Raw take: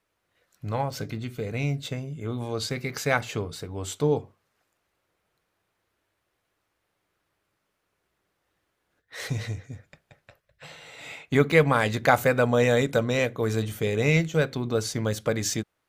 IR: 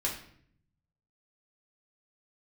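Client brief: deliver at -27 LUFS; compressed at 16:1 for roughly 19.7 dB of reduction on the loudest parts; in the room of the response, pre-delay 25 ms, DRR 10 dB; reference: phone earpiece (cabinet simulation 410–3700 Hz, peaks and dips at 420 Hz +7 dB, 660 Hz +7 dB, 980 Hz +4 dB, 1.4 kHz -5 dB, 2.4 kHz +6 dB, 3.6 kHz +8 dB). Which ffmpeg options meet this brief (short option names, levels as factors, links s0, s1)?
-filter_complex "[0:a]acompressor=threshold=0.0224:ratio=16,asplit=2[s0][s1];[1:a]atrim=start_sample=2205,adelay=25[s2];[s1][s2]afir=irnorm=-1:irlink=0,volume=0.168[s3];[s0][s3]amix=inputs=2:normalize=0,highpass=410,equalizer=f=420:t=q:w=4:g=7,equalizer=f=660:t=q:w=4:g=7,equalizer=f=980:t=q:w=4:g=4,equalizer=f=1400:t=q:w=4:g=-5,equalizer=f=2400:t=q:w=4:g=6,equalizer=f=3600:t=q:w=4:g=8,lowpass=f=3700:w=0.5412,lowpass=f=3700:w=1.3066,volume=3.35"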